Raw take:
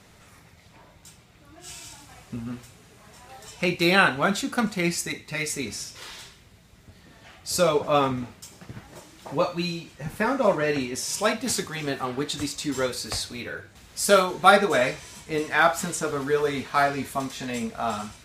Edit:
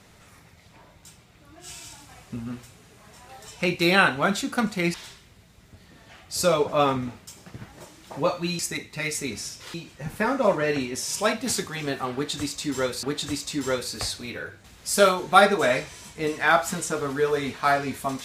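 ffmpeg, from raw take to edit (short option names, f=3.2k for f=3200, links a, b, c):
-filter_complex "[0:a]asplit=5[a][b][c][d][e];[a]atrim=end=4.942[f];[b]atrim=start=6.088:end=9.742[g];[c]atrim=start=4.938:end=6.092[h];[d]atrim=start=9.738:end=13.032[i];[e]atrim=start=12.138[j];[f][g]acrossfade=d=0.004:c1=hsin:c2=hsin[k];[k][h]acrossfade=d=0.004:c1=hsin:c2=hsin[l];[l][i]acrossfade=d=0.004:c1=hsin:c2=hsin[m];[m][j]acrossfade=d=0.004:c1=hsin:c2=hsin"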